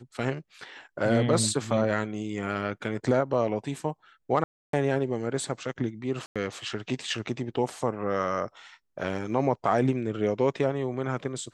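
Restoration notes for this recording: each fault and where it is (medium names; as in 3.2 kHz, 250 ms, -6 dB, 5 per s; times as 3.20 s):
4.44–4.73 s: dropout 293 ms
6.26–6.36 s: dropout 96 ms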